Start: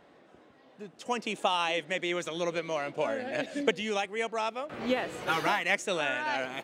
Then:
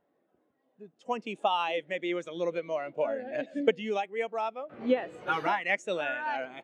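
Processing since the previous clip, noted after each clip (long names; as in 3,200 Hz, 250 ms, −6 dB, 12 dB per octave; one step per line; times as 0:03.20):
every bin expanded away from the loudest bin 1.5 to 1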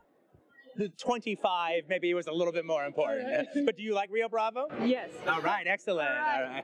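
noise reduction from a noise print of the clip's start 23 dB
multiband upward and downward compressor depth 100%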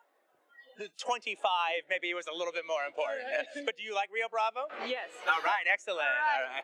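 high-pass filter 800 Hz 12 dB per octave
level +2.5 dB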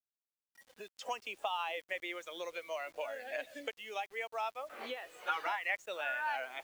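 bit reduction 9 bits
level −7 dB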